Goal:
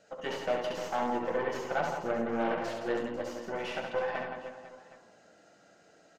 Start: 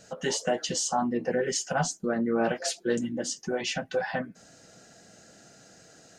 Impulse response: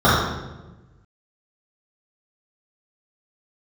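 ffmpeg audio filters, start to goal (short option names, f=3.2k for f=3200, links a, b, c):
-filter_complex "[0:a]bandreject=f=1.7k:w=29,aeval=exprs='0.188*(cos(1*acos(clip(val(0)/0.188,-1,1)))-cos(1*PI/2))+0.0106*(cos(3*acos(clip(val(0)/0.188,-1,1)))-cos(3*PI/2))+0.0237*(cos(6*acos(clip(val(0)/0.188,-1,1)))-cos(6*PI/2))':c=same,acrossover=split=3900[a][b];[b]acompressor=threshold=-36dB:ratio=4:attack=1:release=60[c];[a][c]amix=inputs=2:normalize=0,bass=f=250:g=-14,treble=f=4k:g=-14,aecho=1:1:70|168|305.2|497.3|766.2:0.631|0.398|0.251|0.158|0.1,asplit=2[d][e];[1:a]atrim=start_sample=2205,asetrate=33957,aresample=44100[f];[e][f]afir=irnorm=-1:irlink=0,volume=-35.5dB[g];[d][g]amix=inputs=2:normalize=0,volume=-4dB"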